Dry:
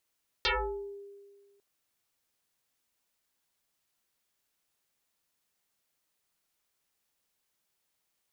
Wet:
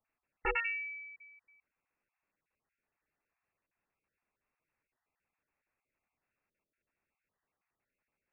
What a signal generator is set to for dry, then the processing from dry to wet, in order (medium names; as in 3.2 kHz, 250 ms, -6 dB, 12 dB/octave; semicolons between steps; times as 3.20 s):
FM tone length 1.15 s, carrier 401 Hz, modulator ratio 1.13, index 11, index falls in 0.57 s exponential, decay 1.68 s, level -23.5 dB
random holes in the spectrogram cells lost 26%; frequency inversion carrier 2.7 kHz